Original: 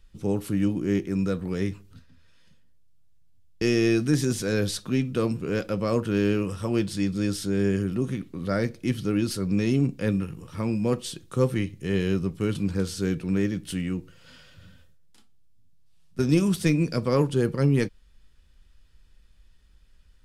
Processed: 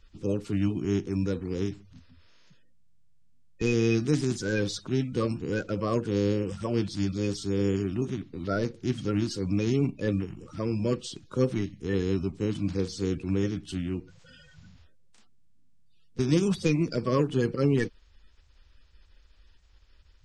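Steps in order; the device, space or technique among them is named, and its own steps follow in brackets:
clip after many re-uploads (low-pass filter 7,500 Hz 24 dB per octave; spectral magnitudes quantised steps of 30 dB)
level −2 dB

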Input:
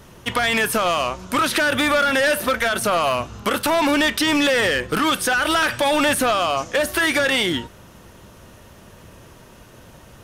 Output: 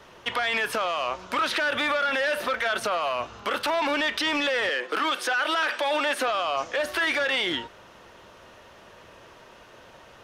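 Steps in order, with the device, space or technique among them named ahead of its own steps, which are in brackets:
DJ mixer with the lows and highs turned down (three-way crossover with the lows and the highs turned down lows −14 dB, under 380 Hz, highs −16 dB, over 5,300 Hz; brickwall limiter −17 dBFS, peak gain reduction 8 dB)
0:04.69–0:06.28: high-pass filter 250 Hz 24 dB per octave

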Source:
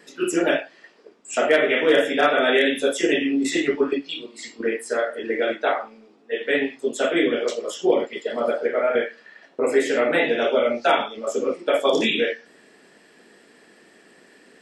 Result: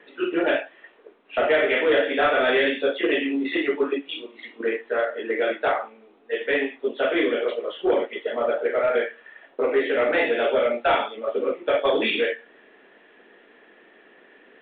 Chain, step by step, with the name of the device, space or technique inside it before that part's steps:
telephone (band-pass filter 310–3,400 Hz; soft clipping −13.5 dBFS, distortion −17 dB; level +1 dB; A-law companding 64 kbit/s 8,000 Hz)

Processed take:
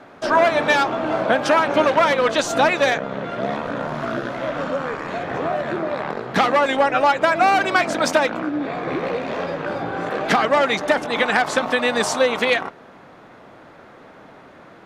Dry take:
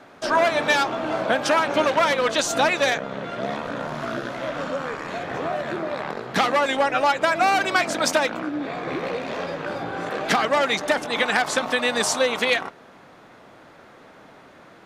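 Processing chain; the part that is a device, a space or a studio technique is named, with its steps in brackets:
behind a face mask (high-shelf EQ 3,300 Hz −8 dB)
level +4 dB

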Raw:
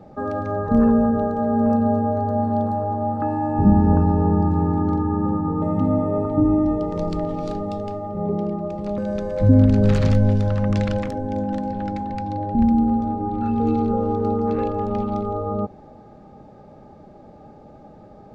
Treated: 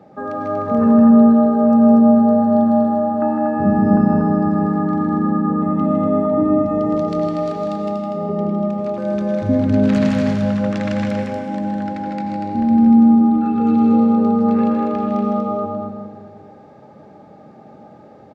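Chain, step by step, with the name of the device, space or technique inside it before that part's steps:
stadium PA (high-pass filter 150 Hz 12 dB per octave; parametric band 1,900 Hz +4 dB 1.4 octaves; loudspeakers that aren't time-aligned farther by 54 metres −6 dB, 82 metres −5 dB; convolution reverb RT60 1.7 s, pre-delay 84 ms, DRR 4 dB)
level −1 dB

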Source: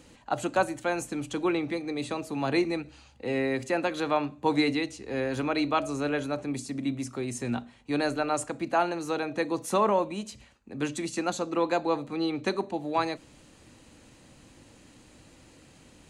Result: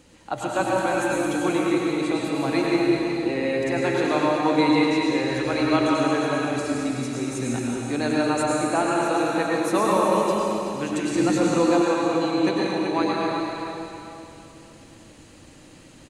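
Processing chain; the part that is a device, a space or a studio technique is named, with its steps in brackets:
cave (single-tap delay 375 ms −8.5 dB; convolution reverb RT60 3.0 s, pre-delay 91 ms, DRR −4 dB)
0:11.15–0:11.82: low-shelf EQ 360 Hz +7.5 dB

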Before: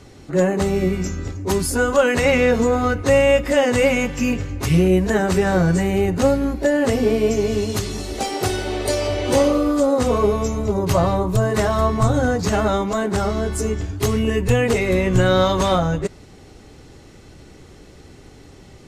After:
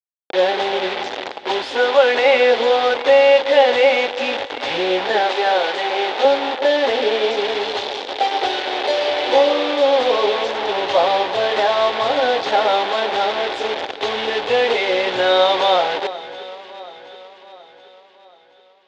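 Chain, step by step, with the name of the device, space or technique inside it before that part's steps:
hand-held game console (bit reduction 4 bits; loudspeaker in its box 450–4,100 Hz, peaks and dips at 510 Hz +4 dB, 810 Hz +8 dB, 1,200 Hz −5 dB, 3,500 Hz +7 dB)
0:05.21–0:06.25: high-pass filter 350 Hz 12 dB per octave
parametric band 160 Hz −12 dB 0.83 octaves
delay that swaps between a low-pass and a high-pass 363 ms, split 1,800 Hz, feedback 69%, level −13.5 dB
level +2 dB

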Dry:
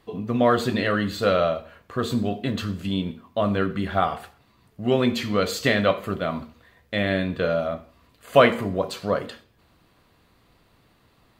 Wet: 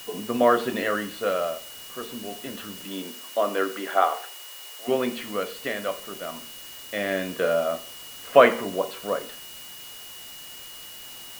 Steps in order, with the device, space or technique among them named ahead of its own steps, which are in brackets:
shortwave radio (band-pass filter 300–2,600 Hz; amplitude tremolo 0.25 Hz, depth 69%; steady tone 2,900 Hz −46 dBFS; white noise bed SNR 16 dB)
0:02.84–0:04.87: high-pass filter 200 Hz → 460 Hz 24 dB per octave
level +2 dB

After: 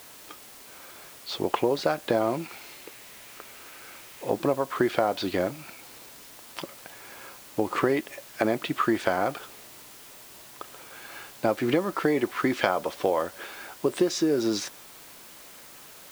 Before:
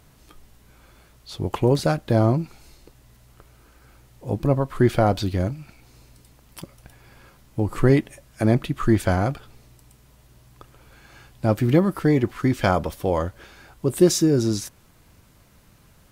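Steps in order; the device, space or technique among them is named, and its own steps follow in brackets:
baby monitor (band-pass filter 390–4,300 Hz; downward compressor, threshold −28 dBFS, peak gain reduction 13.5 dB; white noise bed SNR 19 dB)
0:02.21–0:04.30: parametric band 2,300 Hz +5.5 dB 0.86 octaves
level +7.5 dB

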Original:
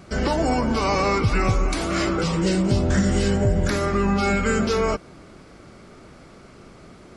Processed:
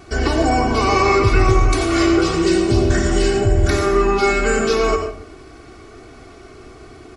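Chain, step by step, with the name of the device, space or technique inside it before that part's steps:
microphone above a desk (comb filter 2.7 ms, depth 76%; convolution reverb RT60 0.55 s, pre-delay 82 ms, DRR 4.5 dB)
level +2 dB

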